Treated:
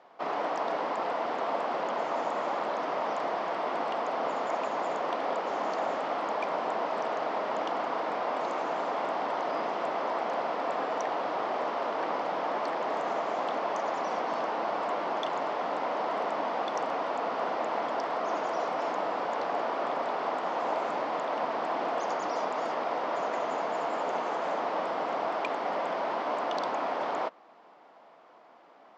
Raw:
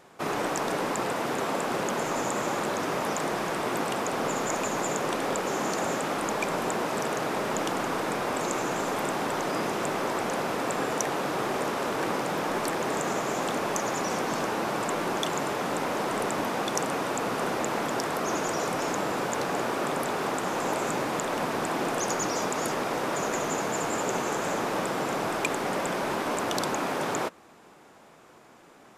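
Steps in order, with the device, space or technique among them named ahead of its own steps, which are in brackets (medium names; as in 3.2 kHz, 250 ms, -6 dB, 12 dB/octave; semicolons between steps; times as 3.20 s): phone earpiece (cabinet simulation 340–4200 Hz, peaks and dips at 380 Hz -5 dB, 680 Hz +6 dB, 980 Hz +3 dB, 1.6 kHz -4 dB, 2.5 kHz -5 dB, 3.7 kHz -5 dB); trim -2.5 dB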